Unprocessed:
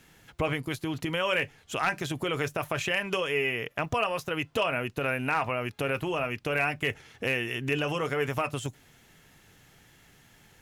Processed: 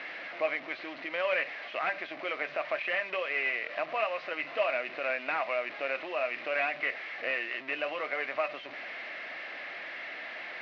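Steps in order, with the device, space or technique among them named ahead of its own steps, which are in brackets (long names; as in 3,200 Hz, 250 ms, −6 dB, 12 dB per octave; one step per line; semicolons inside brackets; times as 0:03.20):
digital answering machine (band-pass filter 380–3,100 Hz; linear delta modulator 32 kbit/s, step −34 dBFS; loudspeaker in its box 410–3,400 Hz, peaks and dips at 430 Hz −10 dB, 620 Hz +6 dB, 900 Hz −9 dB, 1,400 Hz −4 dB, 2,100 Hz +6 dB, 3,300 Hz −6 dB)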